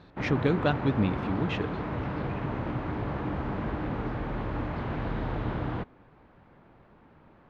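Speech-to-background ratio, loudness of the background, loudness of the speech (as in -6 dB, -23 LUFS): 4.0 dB, -33.0 LUFS, -29.0 LUFS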